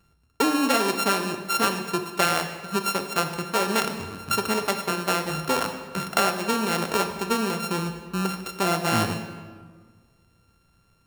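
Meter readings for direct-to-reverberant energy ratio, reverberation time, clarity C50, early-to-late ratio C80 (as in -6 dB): 6.5 dB, 1.6 s, 8.0 dB, 9.5 dB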